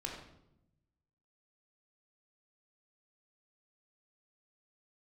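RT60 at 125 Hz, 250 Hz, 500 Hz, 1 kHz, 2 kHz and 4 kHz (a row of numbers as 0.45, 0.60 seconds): 1.5, 1.2, 0.90, 0.75, 0.60, 0.55 seconds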